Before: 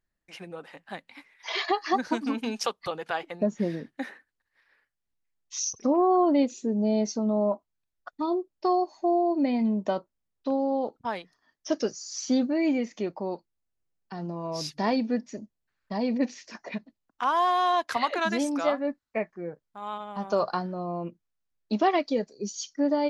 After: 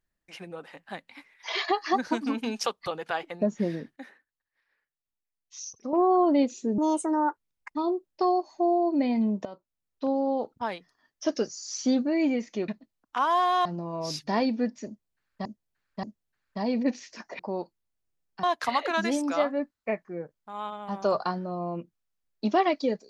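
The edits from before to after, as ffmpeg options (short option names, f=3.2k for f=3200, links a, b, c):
-filter_complex "[0:a]asplit=12[a][b][c][d][e][f][g][h][i][j][k][l];[a]atrim=end=3.962[m];[b]atrim=start=3.958:end=5.932,asetpts=PTS-STARTPTS,volume=-9.5dB[n];[c]atrim=start=5.928:end=6.784[o];[d]atrim=start=6.78:end=8.19,asetpts=PTS-STARTPTS,asetrate=63945,aresample=44100,atrim=end_sample=42883,asetpts=PTS-STARTPTS[p];[e]atrim=start=8.186:end=9.89,asetpts=PTS-STARTPTS,afade=t=out:st=1.7:d=0.004:c=hsin:silence=0.133352[q];[f]atrim=start=9.89:end=13.122,asetpts=PTS-STARTPTS,afade=t=in:d=0.65:silence=0.133352[r];[g]atrim=start=16.738:end=17.712[s];[h]atrim=start=14.158:end=15.962[t];[i]atrim=start=15.378:end=15.962[u];[j]atrim=start=15.378:end=16.742[v];[k]atrim=start=13.118:end=14.162[w];[l]atrim=start=17.708[x];[m][n]acrossfade=d=0.004:c1=hsin:c2=hsin[y];[y][o]acrossfade=d=0.004:c1=hsin:c2=hsin[z];[z][p]acrossfade=d=0.004:c1=hsin:c2=hsin[aa];[q][r]concat=n=2:v=0:a=1[ab];[aa][ab]acrossfade=d=0.004:c1=hsin:c2=hsin[ac];[ac][s]acrossfade=d=0.004:c1=hsin:c2=hsin[ad];[ad][t]acrossfade=d=0.004:c1=hsin:c2=hsin[ae];[ae][u]acrossfade=d=0.004:c1=hsin:c2=hsin[af];[af][v]acrossfade=d=0.004:c1=hsin:c2=hsin[ag];[ag][w]acrossfade=d=0.004:c1=hsin:c2=hsin[ah];[ah][x]acrossfade=d=0.004:c1=hsin:c2=hsin"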